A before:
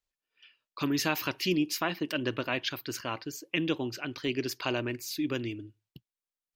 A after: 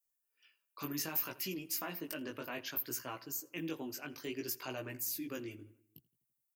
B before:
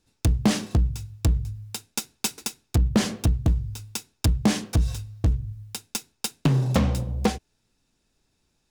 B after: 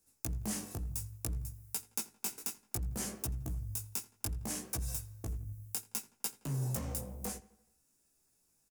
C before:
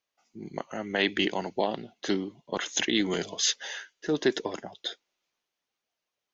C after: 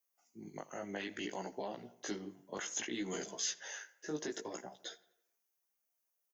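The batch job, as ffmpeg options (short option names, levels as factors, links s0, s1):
-filter_complex "[0:a]acrossover=split=110|4800[s0][s1][s2];[s0]acompressor=threshold=0.0631:ratio=4[s3];[s1]acompressor=threshold=0.0501:ratio=4[s4];[s2]acompressor=threshold=0.00794:ratio=4[s5];[s3][s4][s5]amix=inputs=3:normalize=0,alimiter=limit=0.0891:level=0:latency=1:release=11,equalizer=f=5300:t=o:w=1.5:g=-8.5,asplit=2[s6][s7];[s7]adelay=84,lowpass=f=3400:p=1,volume=0.112,asplit=2[s8][s9];[s9]adelay=84,lowpass=f=3400:p=1,volume=0.55,asplit=2[s10][s11];[s11]adelay=84,lowpass=f=3400:p=1,volume=0.55,asplit=2[s12][s13];[s13]adelay=84,lowpass=f=3400:p=1,volume=0.55,asplit=2[s14][s15];[s15]adelay=84,lowpass=f=3400:p=1,volume=0.55[s16];[s6][s8][s10][s12][s14][s16]amix=inputs=6:normalize=0,flanger=delay=15:depth=5.4:speed=0.62,aexciter=amount=4.5:drive=7.9:freq=5200,lowshelf=f=210:g=-6,volume=0.631"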